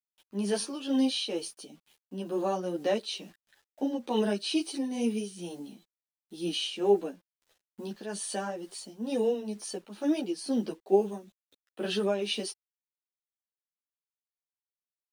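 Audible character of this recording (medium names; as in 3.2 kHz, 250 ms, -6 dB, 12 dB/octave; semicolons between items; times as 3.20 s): a quantiser's noise floor 10-bit, dither none; tremolo triangle 2.2 Hz, depth 65%; a shimmering, thickened sound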